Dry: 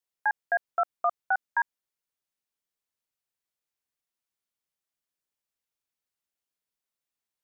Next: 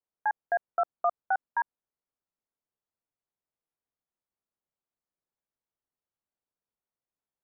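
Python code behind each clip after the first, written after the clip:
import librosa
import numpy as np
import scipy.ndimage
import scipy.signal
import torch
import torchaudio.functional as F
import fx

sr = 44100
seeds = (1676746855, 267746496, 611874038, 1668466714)

y = scipy.signal.sosfilt(scipy.signal.butter(2, 1100.0, 'lowpass', fs=sr, output='sos'), x)
y = y * 10.0 ** (1.5 / 20.0)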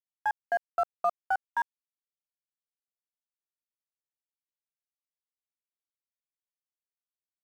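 y = np.sign(x) * np.maximum(np.abs(x) - 10.0 ** (-46.0 / 20.0), 0.0)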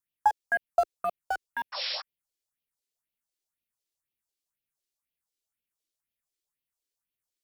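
y = fx.spec_paint(x, sr, seeds[0], shape='noise', start_s=1.72, length_s=0.3, low_hz=500.0, high_hz=5600.0, level_db=-39.0)
y = fx.phaser_stages(y, sr, stages=4, low_hz=140.0, high_hz=1300.0, hz=2.0, feedback_pct=40)
y = y * 10.0 ** (7.5 / 20.0)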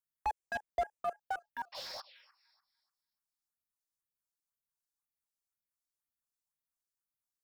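y = fx.echo_thinned(x, sr, ms=295, feedback_pct=28, hz=570.0, wet_db=-18.5)
y = fx.env_phaser(y, sr, low_hz=470.0, high_hz=4000.0, full_db=-27.5)
y = fx.slew_limit(y, sr, full_power_hz=51.0)
y = y * 10.0 ** (-4.5 / 20.0)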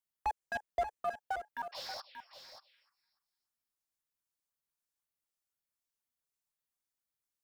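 y = x + 10.0 ** (-10.0 / 20.0) * np.pad(x, (int(583 * sr / 1000.0), 0))[:len(x)]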